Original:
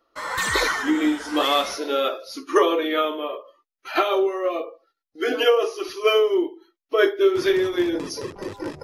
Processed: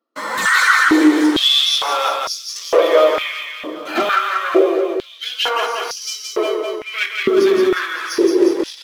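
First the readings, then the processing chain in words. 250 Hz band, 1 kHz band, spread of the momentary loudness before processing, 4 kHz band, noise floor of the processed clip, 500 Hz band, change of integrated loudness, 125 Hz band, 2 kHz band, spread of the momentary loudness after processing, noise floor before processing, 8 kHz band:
+7.5 dB, +6.0 dB, 13 LU, +10.0 dB, −37 dBFS, +4.0 dB, +6.0 dB, can't be measured, +9.0 dB, 12 LU, −84 dBFS, +8.5 dB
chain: leveller curve on the samples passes 3
reverse bouncing-ball delay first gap 170 ms, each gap 1.1×, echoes 5
high-pass on a step sequencer 2.2 Hz 230–5,500 Hz
level −6.5 dB

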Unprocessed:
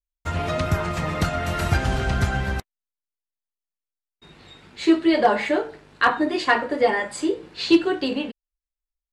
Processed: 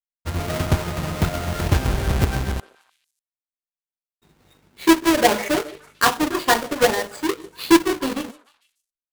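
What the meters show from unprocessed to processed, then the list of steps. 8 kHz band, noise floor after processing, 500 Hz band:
+10.5 dB, below −85 dBFS, +0.5 dB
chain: each half-wave held at its own peak
echo through a band-pass that steps 148 ms, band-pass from 470 Hz, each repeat 1.4 octaves, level −10.5 dB
power curve on the samples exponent 1.4

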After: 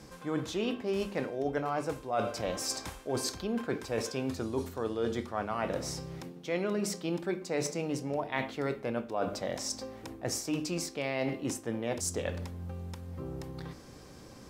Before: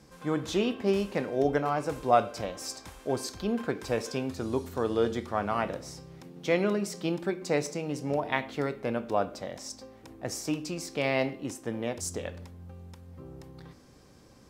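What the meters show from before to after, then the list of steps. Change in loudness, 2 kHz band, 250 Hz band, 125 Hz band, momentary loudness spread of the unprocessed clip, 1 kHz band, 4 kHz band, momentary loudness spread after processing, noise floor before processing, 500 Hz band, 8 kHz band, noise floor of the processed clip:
−4.0 dB, −3.5 dB, −3.0 dB, −1.5 dB, 19 LU, −5.5 dB, 0.0 dB, 9 LU, −55 dBFS, −4.0 dB, +2.5 dB, −50 dBFS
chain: mains-hum notches 50/100/150/200/250 Hz
reversed playback
downward compressor 5 to 1, threshold −36 dBFS, peak gain reduction 18 dB
reversed playback
level +6 dB

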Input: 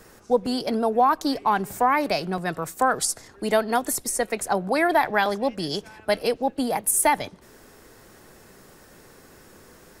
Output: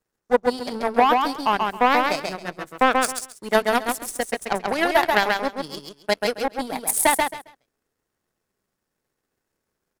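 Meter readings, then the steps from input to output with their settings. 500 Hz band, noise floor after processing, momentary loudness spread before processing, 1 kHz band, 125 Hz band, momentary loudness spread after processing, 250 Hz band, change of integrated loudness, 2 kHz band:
+1.0 dB, −81 dBFS, 8 LU, +2.0 dB, −5.0 dB, 12 LU, −1.0 dB, +1.5 dB, +4.0 dB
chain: power curve on the samples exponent 2
repeating echo 135 ms, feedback 20%, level −3.5 dB
level +6.5 dB

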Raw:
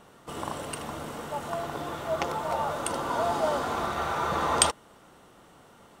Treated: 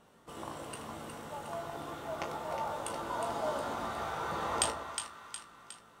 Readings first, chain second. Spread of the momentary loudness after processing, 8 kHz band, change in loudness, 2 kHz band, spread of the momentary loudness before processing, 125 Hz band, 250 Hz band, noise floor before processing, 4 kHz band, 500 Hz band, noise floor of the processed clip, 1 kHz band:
14 LU, −7.5 dB, −8.0 dB, −7.5 dB, 12 LU, −8.5 dB, −7.5 dB, −55 dBFS, −7.5 dB, −8.0 dB, −60 dBFS, −7.5 dB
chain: tuned comb filter 56 Hz, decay 0.19 s, harmonics all, mix 90%
echo with a time of its own for lows and highs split 1,100 Hz, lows 121 ms, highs 362 ms, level −7 dB
level −4 dB

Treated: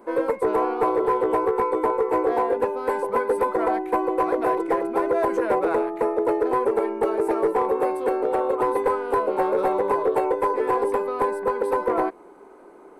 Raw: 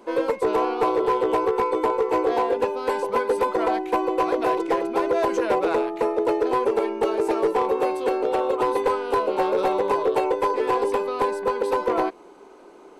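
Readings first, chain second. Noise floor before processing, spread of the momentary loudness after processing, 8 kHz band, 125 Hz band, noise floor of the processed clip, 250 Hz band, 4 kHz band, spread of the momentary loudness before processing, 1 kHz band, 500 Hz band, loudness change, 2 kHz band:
−47 dBFS, 2 LU, can't be measured, 0.0 dB, −47 dBFS, 0.0 dB, below −10 dB, 2 LU, 0.0 dB, 0.0 dB, 0.0 dB, −1.0 dB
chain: flat-topped bell 4,300 Hz −11 dB

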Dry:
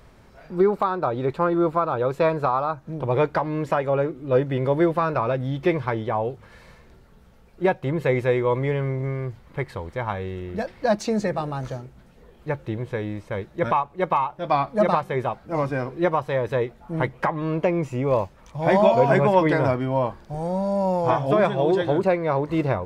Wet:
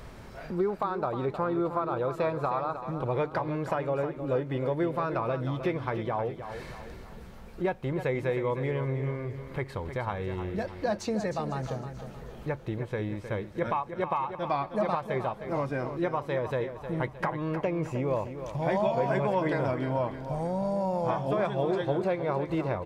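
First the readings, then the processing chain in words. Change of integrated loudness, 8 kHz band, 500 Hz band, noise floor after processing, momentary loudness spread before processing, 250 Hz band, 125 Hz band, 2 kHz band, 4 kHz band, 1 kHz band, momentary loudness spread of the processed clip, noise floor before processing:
−7.0 dB, can't be measured, −7.5 dB, −45 dBFS, 11 LU, −6.5 dB, −6.0 dB, −7.0 dB, −6.5 dB, −7.5 dB, 8 LU, −52 dBFS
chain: downward compressor 2 to 1, threshold −43 dBFS, peak gain reduction 16.5 dB
on a send: repeating echo 311 ms, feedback 44%, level −10 dB
on the sum: level +5.5 dB

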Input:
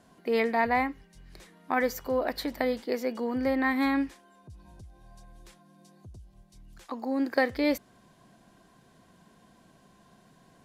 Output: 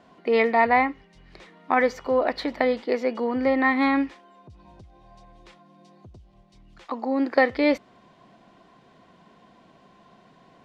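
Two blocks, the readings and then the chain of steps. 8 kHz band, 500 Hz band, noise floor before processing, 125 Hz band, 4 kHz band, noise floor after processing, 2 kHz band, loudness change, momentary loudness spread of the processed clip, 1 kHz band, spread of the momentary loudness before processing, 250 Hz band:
can't be measured, +6.0 dB, −61 dBFS, 0.0 dB, +3.0 dB, −57 dBFS, +6.0 dB, +5.5 dB, 8 LU, +7.0 dB, 7 LU, +4.0 dB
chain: low-pass filter 3,400 Hz 12 dB per octave
low-shelf EQ 190 Hz −10.5 dB
notch filter 1,600 Hz, Q 10
level +7.5 dB

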